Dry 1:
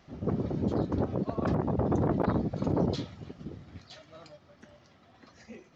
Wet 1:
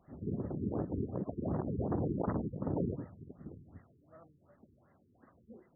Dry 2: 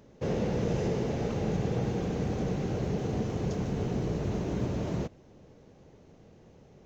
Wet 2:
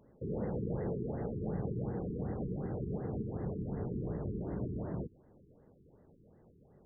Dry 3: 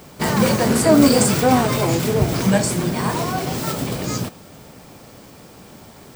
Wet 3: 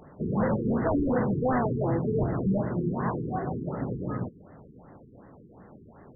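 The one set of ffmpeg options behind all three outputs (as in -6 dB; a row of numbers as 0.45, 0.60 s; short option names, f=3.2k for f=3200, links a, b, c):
-af "aeval=exprs='0.251*(abs(mod(val(0)/0.251+3,4)-2)-1)':c=same,afftfilt=real='re*lt(b*sr/1024,430*pow(2100/430,0.5+0.5*sin(2*PI*2.7*pts/sr)))':imag='im*lt(b*sr/1024,430*pow(2100/430,0.5+0.5*sin(2*PI*2.7*pts/sr)))':win_size=1024:overlap=0.75,volume=-6.5dB"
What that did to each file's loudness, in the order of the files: -7.0, -7.0, -10.5 LU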